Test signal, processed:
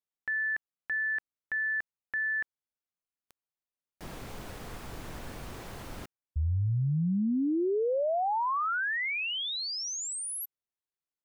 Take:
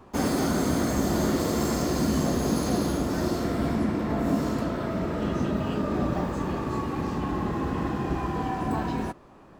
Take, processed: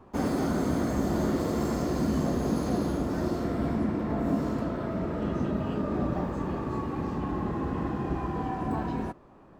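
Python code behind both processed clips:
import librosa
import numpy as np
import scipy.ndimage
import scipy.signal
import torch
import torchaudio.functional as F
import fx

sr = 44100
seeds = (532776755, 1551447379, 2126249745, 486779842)

y = fx.high_shelf(x, sr, hz=2300.0, db=-9.0)
y = y * librosa.db_to_amplitude(-2.0)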